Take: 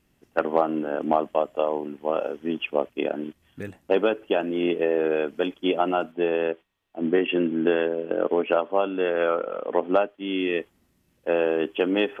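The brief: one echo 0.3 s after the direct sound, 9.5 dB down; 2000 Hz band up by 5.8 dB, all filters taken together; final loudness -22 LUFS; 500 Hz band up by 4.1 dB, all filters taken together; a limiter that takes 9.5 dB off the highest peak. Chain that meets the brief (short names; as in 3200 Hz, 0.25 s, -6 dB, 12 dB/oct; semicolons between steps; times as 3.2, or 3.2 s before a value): bell 500 Hz +4.5 dB; bell 2000 Hz +8 dB; limiter -13.5 dBFS; echo 0.3 s -9.5 dB; gain +3 dB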